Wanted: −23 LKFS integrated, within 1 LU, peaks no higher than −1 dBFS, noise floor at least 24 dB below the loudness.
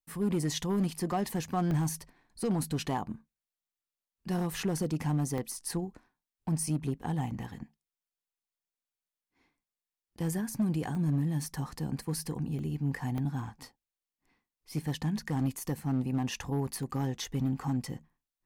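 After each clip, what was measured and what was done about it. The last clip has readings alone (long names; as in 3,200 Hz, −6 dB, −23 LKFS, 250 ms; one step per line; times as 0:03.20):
share of clipped samples 1.3%; peaks flattened at −23.5 dBFS; number of dropouts 7; longest dropout 1.1 ms; integrated loudness −33.0 LKFS; sample peak −23.5 dBFS; target loudness −23.0 LKFS
→ clipped peaks rebuilt −23.5 dBFS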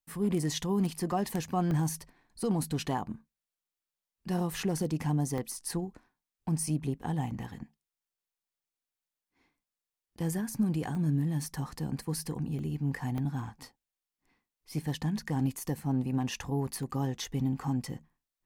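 share of clipped samples 0.0%; number of dropouts 7; longest dropout 1.1 ms
→ repair the gap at 0:01.71/0:05.38/0:10.95/0:12.59/0:13.18/0:14.78/0:16.83, 1.1 ms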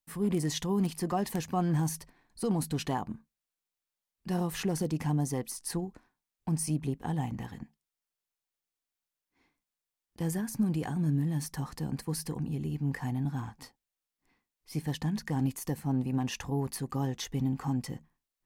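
number of dropouts 0; integrated loudness −33.0 LKFS; sample peak −14.5 dBFS; target loudness −23.0 LKFS
→ level +10 dB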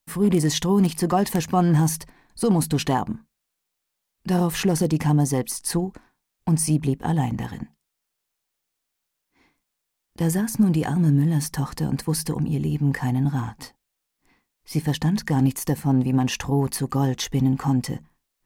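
integrated loudness −23.0 LKFS; sample peak −4.5 dBFS; background noise floor −80 dBFS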